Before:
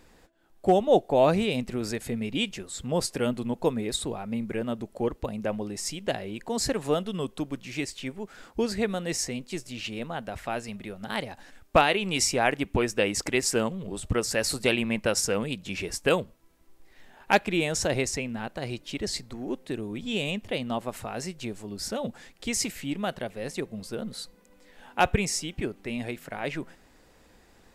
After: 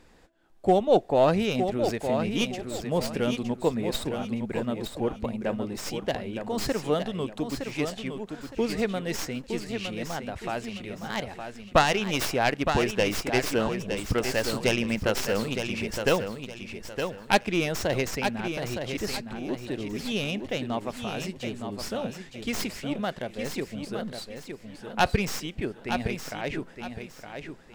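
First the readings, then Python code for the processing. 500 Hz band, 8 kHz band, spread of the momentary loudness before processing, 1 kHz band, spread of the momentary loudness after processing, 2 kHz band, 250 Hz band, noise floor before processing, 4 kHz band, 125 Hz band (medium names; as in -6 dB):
+0.5 dB, -6.0 dB, 12 LU, +1.0 dB, 11 LU, +0.5 dB, +1.0 dB, -58 dBFS, -0.5 dB, +1.5 dB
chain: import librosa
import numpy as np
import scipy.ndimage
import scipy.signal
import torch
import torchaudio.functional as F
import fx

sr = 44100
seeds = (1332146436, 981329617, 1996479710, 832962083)

y = fx.tracing_dist(x, sr, depth_ms=0.17)
y = fx.high_shelf(y, sr, hz=11000.0, db=-10.5)
y = fx.echo_feedback(y, sr, ms=914, feedback_pct=29, wet_db=-7)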